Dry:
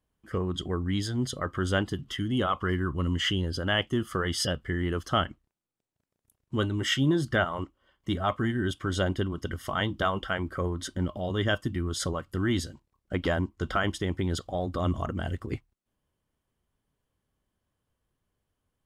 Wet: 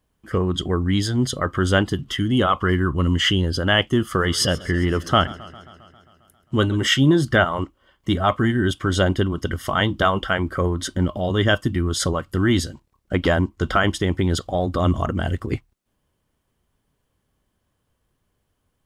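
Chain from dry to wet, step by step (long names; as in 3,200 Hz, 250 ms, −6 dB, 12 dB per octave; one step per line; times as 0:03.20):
0:04.01–0:06.87: feedback echo with a swinging delay time 134 ms, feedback 69%, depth 91 cents, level −20 dB
level +8.5 dB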